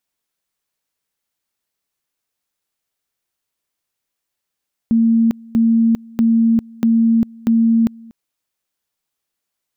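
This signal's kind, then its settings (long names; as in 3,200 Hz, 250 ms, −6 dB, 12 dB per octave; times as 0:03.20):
tone at two levels in turn 228 Hz −10 dBFS, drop 25.5 dB, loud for 0.40 s, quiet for 0.24 s, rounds 5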